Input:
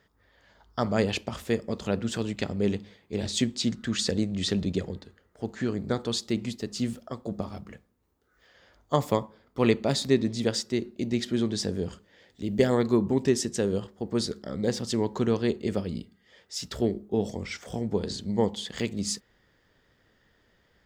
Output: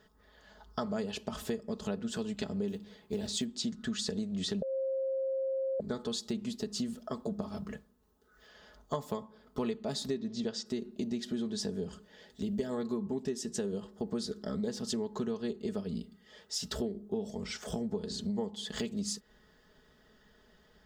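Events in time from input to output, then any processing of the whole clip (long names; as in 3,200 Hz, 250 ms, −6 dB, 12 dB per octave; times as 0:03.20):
0:02.68–0:03.45: floating-point word with a short mantissa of 4 bits
0:04.62–0:05.80: beep over 533 Hz −12 dBFS
0:10.17–0:10.66: low-pass filter 6,900 Hz 24 dB per octave
whole clip: comb filter 4.7 ms, depth 66%; downward compressor 6 to 1, threshold −34 dBFS; parametric band 2,200 Hz −8 dB 0.41 octaves; level +1.5 dB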